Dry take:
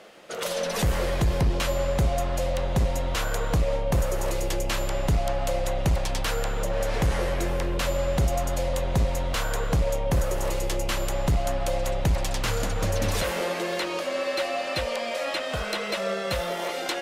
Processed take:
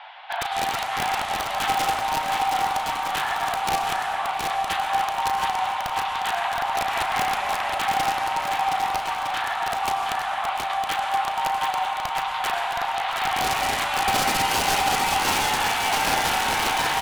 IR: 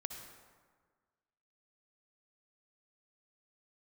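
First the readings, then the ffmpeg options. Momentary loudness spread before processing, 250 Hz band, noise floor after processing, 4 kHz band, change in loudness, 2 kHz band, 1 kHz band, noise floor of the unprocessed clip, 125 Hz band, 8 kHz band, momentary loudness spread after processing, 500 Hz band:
3 LU, −6.0 dB, −29 dBFS, +6.5 dB, +3.5 dB, +7.5 dB, +12.0 dB, −31 dBFS, −14.5 dB, +4.0 dB, 5 LU, −6.0 dB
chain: -filter_complex "[0:a]aemphasis=mode=production:type=50fm,acrusher=bits=8:mode=log:mix=0:aa=0.000001,acontrast=89,alimiter=limit=-12dB:level=0:latency=1:release=273,highpass=frequency=510:width_type=q:width=0.5412,highpass=frequency=510:width_type=q:width=1.307,lowpass=frequency=3400:width_type=q:width=0.5176,lowpass=frequency=3400:width_type=q:width=0.7071,lowpass=frequency=3400:width_type=q:width=1.932,afreqshift=230,aeval=exprs='(mod(7.94*val(0)+1,2)-1)/7.94':channel_layout=same,highshelf=frequency=2400:gain=-10,asplit=2[link_01][link_02];[link_02]adelay=35,volume=-12dB[link_03];[link_01][link_03]amix=inputs=2:normalize=0,aecho=1:1:720|1260|1665|1969|2197:0.631|0.398|0.251|0.158|0.1,asplit=2[link_04][link_05];[1:a]atrim=start_sample=2205,asetrate=25578,aresample=44100,highshelf=frequency=3400:gain=11[link_06];[link_05][link_06]afir=irnorm=-1:irlink=0,volume=-2.5dB[link_07];[link_04][link_07]amix=inputs=2:normalize=0,volume=-2dB"

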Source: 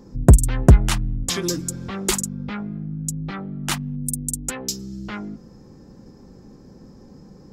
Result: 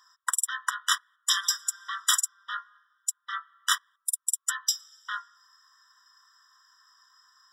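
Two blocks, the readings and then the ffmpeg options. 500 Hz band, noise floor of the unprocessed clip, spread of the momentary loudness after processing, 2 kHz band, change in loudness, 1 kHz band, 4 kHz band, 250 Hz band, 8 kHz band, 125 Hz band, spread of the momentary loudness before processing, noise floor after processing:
below −40 dB, −46 dBFS, 12 LU, +2.0 dB, −6.5 dB, −0.5 dB, +2.5 dB, below −40 dB, −0.5 dB, below −40 dB, 17 LU, −79 dBFS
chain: -af "highpass=frequency=1100:width=0.5412,highpass=frequency=1100:width=1.3066,highshelf=frequency=9100:gain=-5.5,afftfilt=real='re*eq(mod(floor(b*sr/1024/990),2),1)':imag='im*eq(mod(floor(b*sr/1024/990),2),1)':win_size=1024:overlap=0.75,volume=5dB"

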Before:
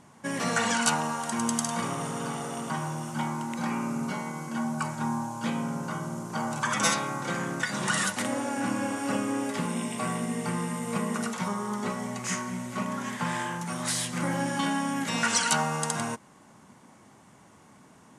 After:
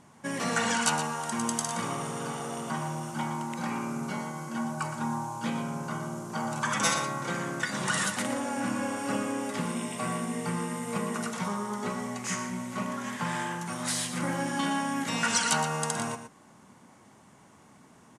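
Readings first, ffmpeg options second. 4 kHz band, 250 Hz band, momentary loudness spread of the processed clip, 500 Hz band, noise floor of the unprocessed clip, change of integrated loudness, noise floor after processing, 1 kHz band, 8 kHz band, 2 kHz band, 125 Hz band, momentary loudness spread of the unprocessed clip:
−1.0 dB, −2.0 dB, 8 LU, −1.0 dB, −55 dBFS, −1.5 dB, −56 dBFS, −1.0 dB, −1.0 dB, −1.0 dB, −2.0 dB, 8 LU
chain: -af "aecho=1:1:118:0.316,volume=-1.5dB"

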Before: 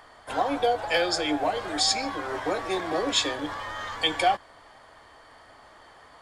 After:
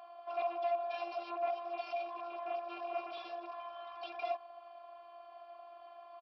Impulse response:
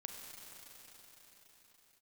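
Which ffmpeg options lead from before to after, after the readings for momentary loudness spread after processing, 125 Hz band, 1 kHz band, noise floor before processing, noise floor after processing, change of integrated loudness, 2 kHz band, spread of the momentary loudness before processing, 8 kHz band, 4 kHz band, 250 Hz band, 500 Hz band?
17 LU, below −40 dB, −10.5 dB, −53 dBFS, −55 dBFS, −13.5 dB, −19.0 dB, 9 LU, below −40 dB, −26.0 dB, −22.5 dB, −10.0 dB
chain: -filter_complex "[0:a]afftfilt=real='hypot(re,im)*cos(PI*b)':imag='0':win_size=512:overlap=0.75,asubboost=boost=6.5:cutoff=53,aresample=11025,aeval=exprs='0.0473*(abs(mod(val(0)/0.0473+3,4)-2)-1)':channel_layout=same,aresample=44100,alimiter=level_in=8.5dB:limit=-24dB:level=0:latency=1:release=32,volume=-8.5dB,asplit=3[link_01][link_02][link_03];[link_01]bandpass=frequency=730:width_type=q:width=8,volume=0dB[link_04];[link_02]bandpass=frequency=1090:width_type=q:width=8,volume=-6dB[link_05];[link_03]bandpass=frequency=2440:width_type=q:width=8,volume=-9dB[link_06];[link_04][link_05][link_06]amix=inputs=3:normalize=0,volume=9dB"

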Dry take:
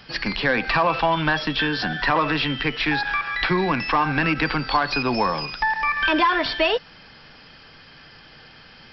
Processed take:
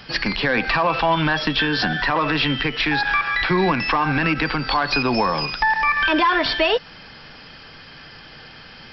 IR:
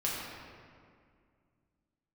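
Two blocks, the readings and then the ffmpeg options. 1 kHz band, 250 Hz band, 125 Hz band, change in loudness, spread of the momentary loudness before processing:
+1.5 dB, +2.0 dB, +2.5 dB, +2.0 dB, 4 LU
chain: -af "alimiter=limit=-14.5dB:level=0:latency=1:release=129,volume=5dB"

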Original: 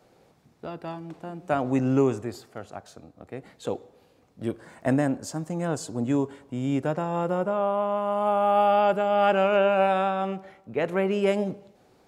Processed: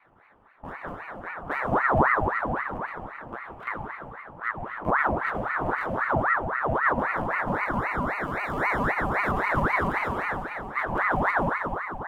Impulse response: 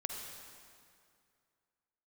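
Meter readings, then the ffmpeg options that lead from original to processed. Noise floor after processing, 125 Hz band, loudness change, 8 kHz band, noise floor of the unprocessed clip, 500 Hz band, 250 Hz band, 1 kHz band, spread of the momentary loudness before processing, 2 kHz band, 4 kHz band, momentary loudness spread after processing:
−54 dBFS, −1.5 dB, −1.0 dB, below −10 dB, −60 dBFS, −6.5 dB, −5.5 dB, +1.0 dB, 19 LU, +10.5 dB, can't be measured, 14 LU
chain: -filter_complex "[0:a]acrossover=split=1200[link_01][link_02];[link_02]acrusher=samples=25:mix=1:aa=0.000001[link_03];[link_01][link_03]amix=inputs=2:normalize=0,acrossover=split=490|3000[link_04][link_05][link_06];[link_05]acompressor=threshold=-43dB:ratio=3[link_07];[link_04][link_07][link_06]amix=inputs=3:normalize=0,highshelf=frequency=3000:width_type=q:width=1.5:gain=-13.5[link_08];[1:a]atrim=start_sample=2205,asetrate=29988,aresample=44100[link_09];[link_08][link_09]afir=irnorm=-1:irlink=0,aeval=exprs='val(0)*sin(2*PI*1000*n/s+1000*0.65/3.8*sin(2*PI*3.8*n/s))':channel_layout=same,volume=2dB"

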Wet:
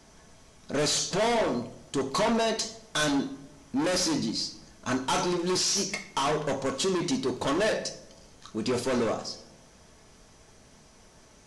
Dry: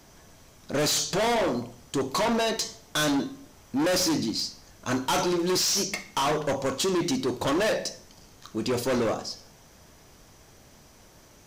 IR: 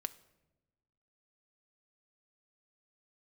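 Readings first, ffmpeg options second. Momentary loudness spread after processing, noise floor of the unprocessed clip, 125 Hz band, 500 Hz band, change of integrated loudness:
9 LU, −54 dBFS, −1.5 dB, −1.5 dB, −1.5 dB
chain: -filter_complex "[1:a]atrim=start_sample=2205[link_01];[0:a][link_01]afir=irnorm=-1:irlink=0" -ar 24000 -c:a aac -b:a 64k

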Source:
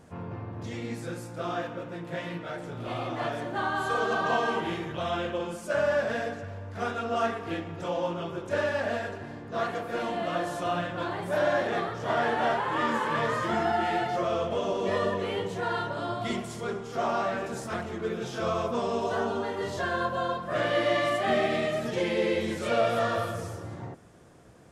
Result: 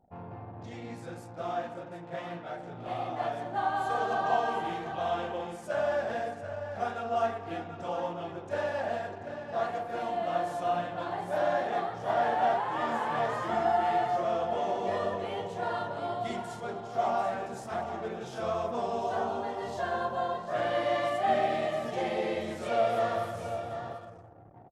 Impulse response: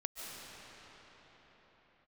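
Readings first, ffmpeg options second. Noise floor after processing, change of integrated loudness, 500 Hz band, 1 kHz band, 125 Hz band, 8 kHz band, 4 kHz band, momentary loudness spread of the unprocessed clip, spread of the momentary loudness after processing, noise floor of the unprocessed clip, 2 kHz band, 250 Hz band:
−45 dBFS, −2.0 dB, −2.5 dB, +0.5 dB, −6.5 dB, can't be measured, −6.5 dB, 11 LU, 12 LU, −41 dBFS, −6.0 dB, −6.5 dB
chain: -af "equalizer=frequency=760:width=3.2:gain=11.5,aecho=1:1:740:0.335,anlmdn=0.0398,volume=-7dB"

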